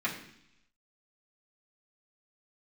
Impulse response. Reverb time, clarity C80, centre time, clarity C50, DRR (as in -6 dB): 0.70 s, 10.5 dB, 23 ms, 8.0 dB, -8.0 dB